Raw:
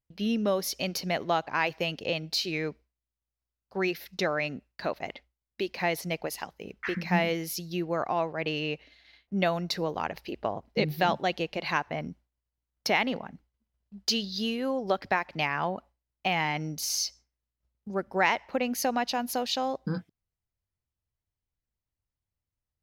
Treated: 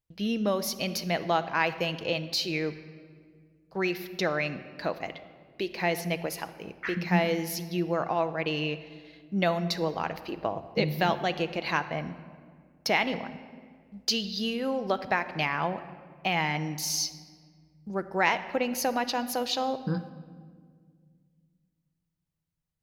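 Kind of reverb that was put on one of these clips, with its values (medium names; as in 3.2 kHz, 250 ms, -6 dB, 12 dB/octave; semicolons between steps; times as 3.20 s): simulated room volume 2900 m³, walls mixed, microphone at 0.65 m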